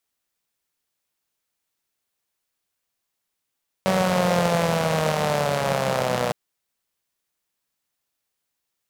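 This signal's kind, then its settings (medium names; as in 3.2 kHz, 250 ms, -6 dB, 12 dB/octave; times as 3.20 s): four-cylinder engine model, changing speed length 2.46 s, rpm 5700, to 3600, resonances 180/550 Hz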